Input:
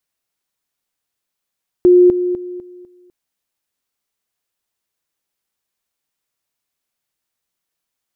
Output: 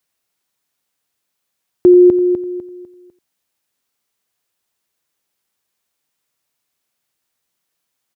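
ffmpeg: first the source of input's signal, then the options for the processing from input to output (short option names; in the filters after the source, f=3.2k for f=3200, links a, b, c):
-f lavfi -i "aevalsrc='pow(10,(-5-10*floor(t/0.25))/20)*sin(2*PI*358*t)':d=1.25:s=44100"
-filter_complex "[0:a]highpass=67,asplit=2[a][b];[b]alimiter=limit=-13.5dB:level=0:latency=1,volume=-2.5dB[c];[a][c]amix=inputs=2:normalize=0,asplit=2[d][e];[e]adelay=87.46,volume=-16dB,highshelf=f=4k:g=-1.97[f];[d][f]amix=inputs=2:normalize=0"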